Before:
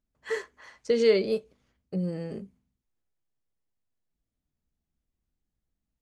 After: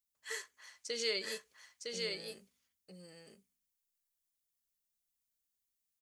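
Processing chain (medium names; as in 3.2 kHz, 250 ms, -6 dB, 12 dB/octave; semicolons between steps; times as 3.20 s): pre-emphasis filter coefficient 0.97; delay 959 ms -3.5 dB; trim +5 dB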